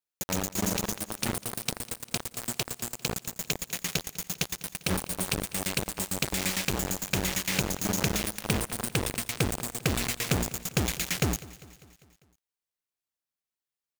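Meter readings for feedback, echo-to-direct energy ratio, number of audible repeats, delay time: 57%, -17.5 dB, 4, 0.199 s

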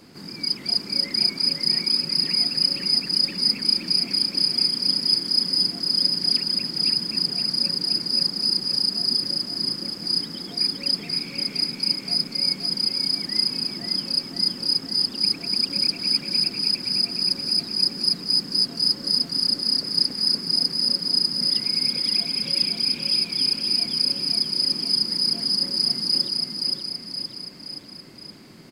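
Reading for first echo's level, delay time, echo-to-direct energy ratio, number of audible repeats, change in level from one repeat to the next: -3.0 dB, 0.522 s, -1.5 dB, 4, -5.5 dB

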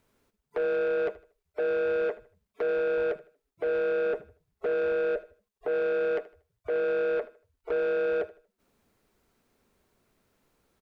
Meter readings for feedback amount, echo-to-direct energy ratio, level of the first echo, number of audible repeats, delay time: 30%, -17.5 dB, -18.0 dB, 2, 78 ms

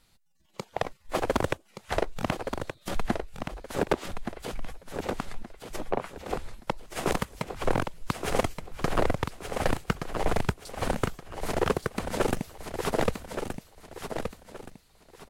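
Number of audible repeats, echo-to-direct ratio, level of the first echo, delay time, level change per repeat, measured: 3, -6.5 dB, -7.0 dB, 1.173 s, -10.0 dB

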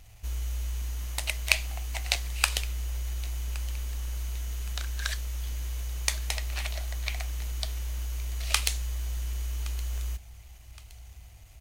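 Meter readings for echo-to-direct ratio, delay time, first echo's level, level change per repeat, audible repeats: -20.0 dB, 1.118 s, -20.5 dB, -8.5 dB, 2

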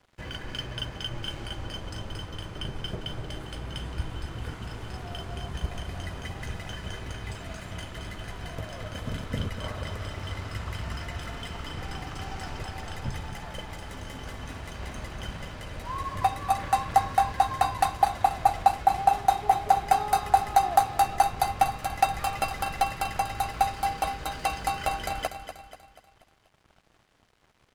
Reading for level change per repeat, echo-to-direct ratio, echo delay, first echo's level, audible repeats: -6.5 dB, -9.0 dB, 0.242 s, -10.0 dB, 4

